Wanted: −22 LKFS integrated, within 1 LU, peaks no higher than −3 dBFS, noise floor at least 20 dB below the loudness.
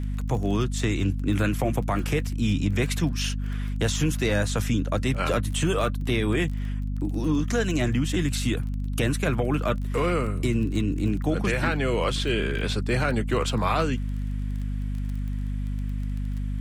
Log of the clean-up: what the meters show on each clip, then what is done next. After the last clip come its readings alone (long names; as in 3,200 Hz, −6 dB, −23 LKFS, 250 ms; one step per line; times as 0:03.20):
crackle rate 21 per second; mains hum 50 Hz; hum harmonics up to 250 Hz; level of the hum −26 dBFS; integrated loudness −26.0 LKFS; sample peak −11.0 dBFS; target loudness −22.0 LKFS
→ click removal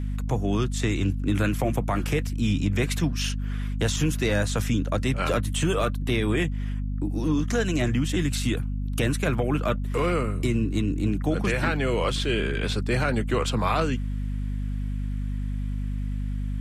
crackle rate 0 per second; mains hum 50 Hz; hum harmonics up to 250 Hz; level of the hum −26 dBFS
→ hum removal 50 Hz, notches 5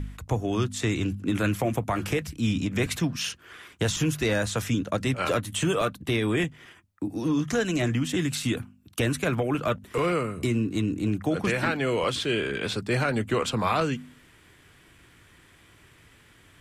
mains hum none found; integrated loudness −27.0 LKFS; sample peak −13.0 dBFS; target loudness −22.0 LKFS
→ level +5 dB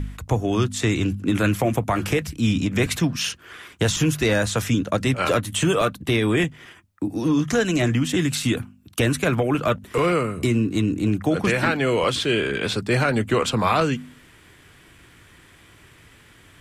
integrated loudness −22.0 LKFS; sample peak −8.0 dBFS; background noise floor −51 dBFS